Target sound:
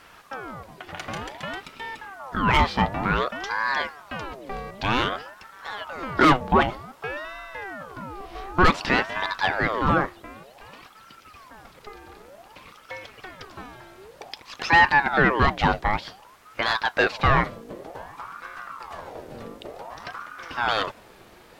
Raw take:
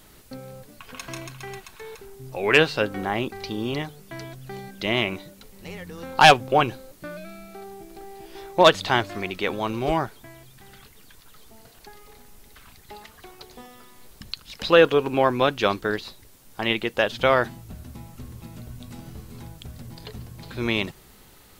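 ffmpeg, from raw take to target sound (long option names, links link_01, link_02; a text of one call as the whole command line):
ffmpeg -i in.wav -filter_complex "[0:a]asoftclip=type=tanh:threshold=-13.5dB,asplit=2[link_01][link_02];[link_02]highpass=frequency=720:poles=1,volume=8dB,asoftclip=type=tanh:threshold=-13.5dB[link_03];[link_01][link_03]amix=inputs=2:normalize=0,lowpass=frequency=1200:poles=1,volume=-6dB,aeval=exprs='val(0)*sin(2*PI*850*n/s+850*0.6/0.54*sin(2*PI*0.54*n/s))':channel_layout=same,volume=8dB" out.wav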